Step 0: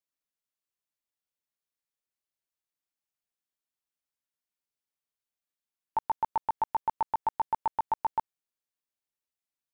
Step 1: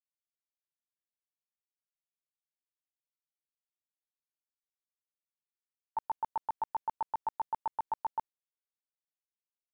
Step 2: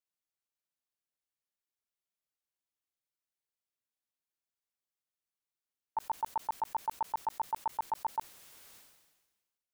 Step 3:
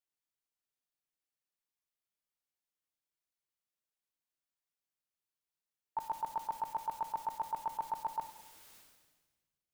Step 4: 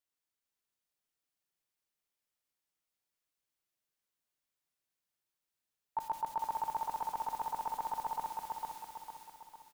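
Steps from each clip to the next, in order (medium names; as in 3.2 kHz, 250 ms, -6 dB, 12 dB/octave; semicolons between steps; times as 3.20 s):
gate with hold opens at -23 dBFS; trim -5.5 dB
decay stretcher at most 45 dB/s
simulated room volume 730 m³, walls mixed, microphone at 0.52 m; trim -2.5 dB
feedback delay 453 ms, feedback 46%, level -3 dB; trim +1 dB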